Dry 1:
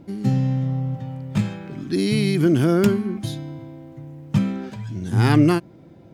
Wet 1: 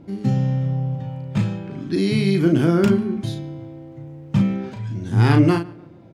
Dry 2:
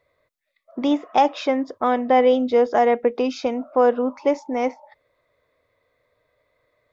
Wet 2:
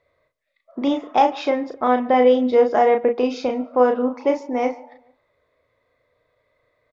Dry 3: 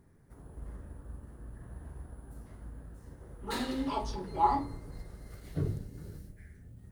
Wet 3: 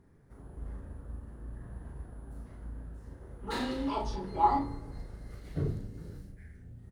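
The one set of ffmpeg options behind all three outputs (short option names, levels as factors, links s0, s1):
-filter_complex "[0:a]highshelf=f=8600:g=-11.5,asplit=2[s0][s1];[s1]adelay=36,volume=0.531[s2];[s0][s2]amix=inputs=2:normalize=0,asplit=2[s3][s4];[s4]adelay=145,lowpass=f=2800:p=1,volume=0.0891,asplit=2[s5][s6];[s6]adelay=145,lowpass=f=2800:p=1,volume=0.42,asplit=2[s7][s8];[s8]adelay=145,lowpass=f=2800:p=1,volume=0.42[s9];[s3][s5][s7][s9]amix=inputs=4:normalize=0"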